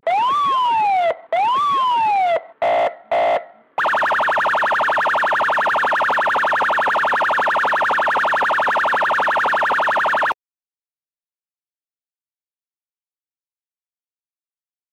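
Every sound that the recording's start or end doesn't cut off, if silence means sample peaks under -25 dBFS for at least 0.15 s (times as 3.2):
1.33–2.38
2.62–2.89
3.12–3.39
3.78–10.32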